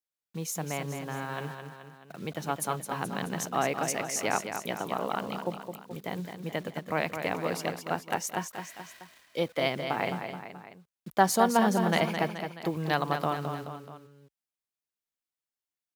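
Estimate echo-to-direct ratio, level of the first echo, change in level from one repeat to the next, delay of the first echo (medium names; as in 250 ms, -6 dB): -6.0 dB, -7.5 dB, -5.0 dB, 214 ms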